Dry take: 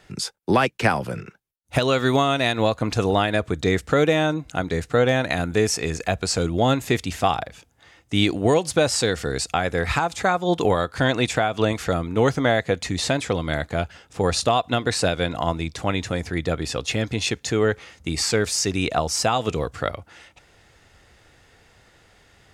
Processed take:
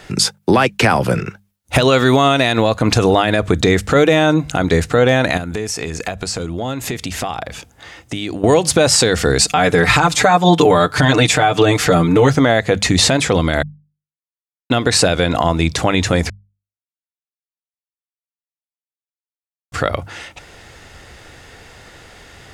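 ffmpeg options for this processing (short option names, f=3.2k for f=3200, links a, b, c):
-filter_complex "[0:a]asettb=1/sr,asplit=3[a][b][c];[a]atrim=end=5.374[d];[b]atrim=start=5.37:end=8.44,asetpts=PTS-STARTPTS,afade=t=in:d=0.004:c=qsin,afade=t=out:st=3.066:d=0.004:c=qsin,acompressor=threshold=-34dB:ratio=6:attack=3.2:release=140:knee=1:detection=peak[e];[c]atrim=start=8.436[f];[d][e]acrossfade=d=0.004:c1=hsin:c2=qsin[g];[g][f]acrossfade=d=0.004:c1=qsin:c2=hsin,asettb=1/sr,asplit=3[h][i][j];[h]atrim=end=9.414[k];[i]atrim=start=9.41:end=12.33,asetpts=PTS-STARTPTS,afade=t=in:d=0.004:c=qsin,afade=t=out:st=2.916:d=0.004:c=qsin,aecho=1:1:6.7:0.9,atrim=end_sample=128772[l];[j]atrim=start=12.326[m];[k][l]acrossfade=d=0.004:c1=hsin:c2=qsin[n];[n][m]acrossfade=d=0.004:c1=qsin:c2=hsin,asplit=5[o][p][q][r][s];[o]atrim=end=13.63,asetpts=PTS-STARTPTS,afade=t=out:st=13.626:d=0.004:c=hsin[t];[p]atrim=start=13.63:end=14.7,asetpts=PTS-STARTPTS,volume=0[u];[q]atrim=start=14.7:end=16.3,asetpts=PTS-STARTPTS,afade=t=in:d=0.004:c=hsin,afade=t=out:st=1.596:d=0.004:c=hsin[v];[r]atrim=start=16.3:end=19.72,asetpts=PTS-STARTPTS,volume=0[w];[s]atrim=start=19.72,asetpts=PTS-STARTPTS,afade=t=in:d=0.004:c=hsin[x];[t][u][v][w][x]concat=n=5:v=0:a=1,acompressor=threshold=-22dB:ratio=2,bandreject=f=50:t=h:w=6,bandreject=f=100:t=h:w=6,bandreject=f=150:t=h:w=6,bandreject=f=200:t=h:w=6,alimiter=level_in=15dB:limit=-1dB:release=50:level=0:latency=1,volume=-1dB"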